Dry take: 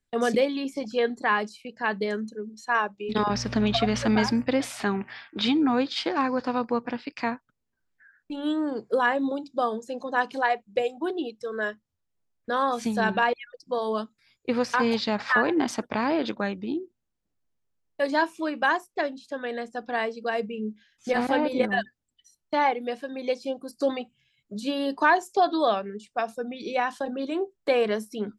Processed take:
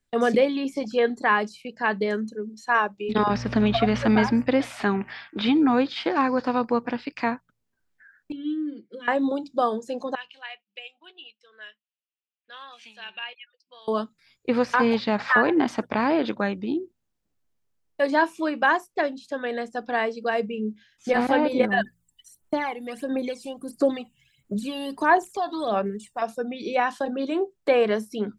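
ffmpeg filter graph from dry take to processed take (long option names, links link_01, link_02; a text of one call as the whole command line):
ffmpeg -i in.wav -filter_complex "[0:a]asettb=1/sr,asplit=3[link_01][link_02][link_03];[link_01]atrim=end=8.324[link_04];[link_02]atrim=start=8.32:end=9.08,asetpts=PTS-STARTPTS,afade=type=in:duration=0.004:curve=qsin,afade=type=out:start_time=0.756:duration=0.004:curve=qsin,asplit=3[link_05][link_06][link_07];[link_05]bandpass=frequency=270:width_type=q:width=8,volume=0dB[link_08];[link_06]bandpass=frequency=2290:width_type=q:width=8,volume=-6dB[link_09];[link_07]bandpass=frequency=3010:width_type=q:width=8,volume=-9dB[link_10];[link_08][link_09][link_10]amix=inputs=3:normalize=0,aecho=1:1:5.8:0.91,atrim=end_sample=33516[link_11];[link_03]atrim=start=9.076[link_12];[link_04][link_11]acrossfade=duration=0.004:curve1=hsin:curve2=qsin[link_13];[link_13][link_12]acrossfade=duration=0.004:curve1=qsin:curve2=hsin,asettb=1/sr,asplit=3[link_14][link_15][link_16];[link_14]atrim=end=10.154[link_17];[link_15]atrim=start=10.15:end=13.88,asetpts=PTS-STARTPTS,afade=type=in:duration=0.004:curve=qsin,afade=type=out:start_time=3.726:duration=0.004:curve=qsin,bandpass=frequency=2800:width_type=q:width=5.1,asplit=2[link_18][link_19];[link_19]adelay=14,volume=-13dB[link_20];[link_18][link_20]amix=inputs=2:normalize=0,atrim=end_sample=164493[link_21];[link_16]atrim=start=13.876[link_22];[link_17][link_21]acrossfade=duration=0.004:curve1=hsin:curve2=qsin[link_23];[link_23][link_22]acrossfade=duration=0.004:curve1=qsin:curve2=hsin,asettb=1/sr,asplit=3[link_24][link_25][link_26];[link_24]atrim=end=21.804[link_27];[link_25]atrim=start=21.8:end=26.22,asetpts=PTS-STARTPTS,afade=type=in:duration=0.004:curve=qsin,afade=type=out:start_time=4.416:duration=0.004:curve=qsin,highshelf=frequency=6700:width_type=q:width=1.5:gain=8,acompressor=threshold=-37dB:ratio=1.5:attack=3.2:release=140:knee=1:detection=peak,aphaser=in_gain=1:out_gain=1:delay=1.1:decay=0.64:speed=1.5:type=sinusoidal[link_28];[link_26]atrim=start=26.216[link_29];[link_27][link_28]acrossfade=duration=0.004:curve1=hsin:curve2=qsin[link_30];[link_30][link_29]acrossfade=duration=0.004:curve1=qsin:curve2=hsin,acrossover=split=3300[link_31][link_32];[link_32]acompressor=threshold=-47dB:ratio=4:attack=1:release=60[link_33];[link_31][link_33]amix=inputs=2:normalize=0,bandreject=frequency=57.1:width_type=h:width=4,bandreject=frequency=114.2:width_type=h:width=4,bandreject=frequency=171.3:width_type=h:width=4,volume=3dB" out.wav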